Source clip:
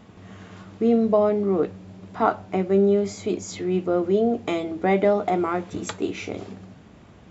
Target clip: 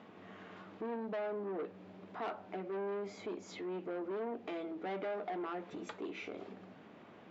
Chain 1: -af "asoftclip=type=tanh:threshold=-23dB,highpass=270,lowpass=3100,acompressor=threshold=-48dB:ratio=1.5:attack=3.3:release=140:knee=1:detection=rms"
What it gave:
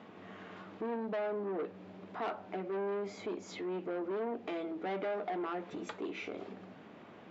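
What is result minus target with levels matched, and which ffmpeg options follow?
downward compressor: peak gain reduction −3 dB
-af "asoftclip=type=tanh:threshold=-23dB,highpass=270,lowpass=3100,acompressor=threshold=-56.5dB:ratio=1.5:attack=3.3:release=140:knee=1:detection=rms"

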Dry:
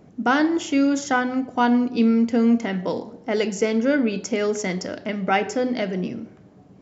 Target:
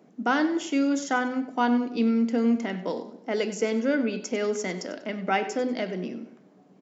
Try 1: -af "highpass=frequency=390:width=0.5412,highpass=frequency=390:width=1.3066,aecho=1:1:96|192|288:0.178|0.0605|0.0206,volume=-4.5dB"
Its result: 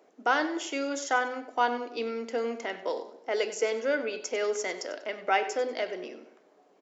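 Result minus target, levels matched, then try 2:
250 Hz band −9.5 dB
-af "highpass=frequency=190:width=0.5412,highpass=frequency=190:width=1.3066,aecho=1:1:96|192|288:0.178|0.0605|0.0206,volume=-4.5dB"

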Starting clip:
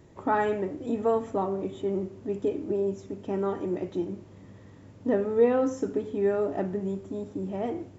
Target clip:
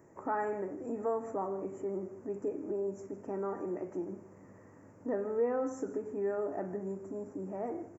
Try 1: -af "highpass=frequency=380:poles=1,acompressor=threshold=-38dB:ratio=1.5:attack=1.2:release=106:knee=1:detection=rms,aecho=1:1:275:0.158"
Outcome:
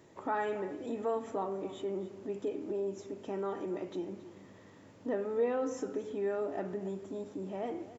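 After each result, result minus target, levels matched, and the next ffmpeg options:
4,000 Hz band +19.5 dB; echo 117 ms late
-af "highpass=frequency=380:poles=1,acompressor=threshold=-38dB:ratio=1.5:attack=1.2:release=106:knee=1:detection=rms,asuperstop=centerf=3600:order=4:qfactor=0.71,aecho=1:1:275:0.158"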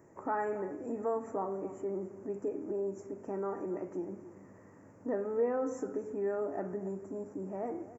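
echo 117 ms late
-af "highpass=frequency=380:poles=1,acompressor=threshold=-38dB:ratio=1.5:attack=1.2:release=106:knee=1:detection=rms,asuperstop=centerf=3600:order=4:qfactor=0.71,aecho=1:1:158:0.158"

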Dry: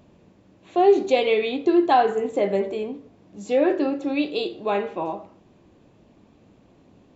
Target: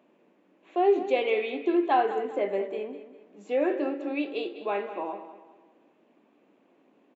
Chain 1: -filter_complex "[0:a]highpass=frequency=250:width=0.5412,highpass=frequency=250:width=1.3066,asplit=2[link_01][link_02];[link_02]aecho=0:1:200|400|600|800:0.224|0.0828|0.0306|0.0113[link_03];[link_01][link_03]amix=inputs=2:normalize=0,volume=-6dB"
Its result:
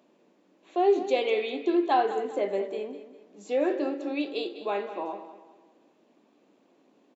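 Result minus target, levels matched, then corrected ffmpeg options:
8,000 Hz band +9.5 dB
-filter_complex "[0:a]highpass=frequency=250:width=0.5412,highpass=frequency=250:width=1.3066,highshelf=frequency=3400:width_type=q:width=1.5:gain=-8,asplit=2[link_01][link_02];[link_02]aecho=0:1:200|400|600|800:0.224|0.0828|0.0306|0.0113[link_03];[link_01][link_03]amix=inputs=2:normalize=0,volume=-6dB"

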